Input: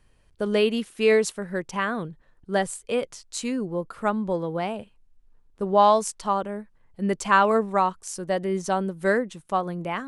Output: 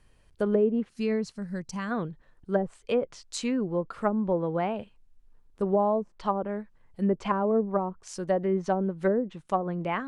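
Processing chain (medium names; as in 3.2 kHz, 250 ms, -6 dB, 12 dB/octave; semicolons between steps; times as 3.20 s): time-frequency box 0.89–1.91 s, 240–4000 Hz -11 dB; low-pass that closes with the level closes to 470 Hz, closed at -18.5 dBFS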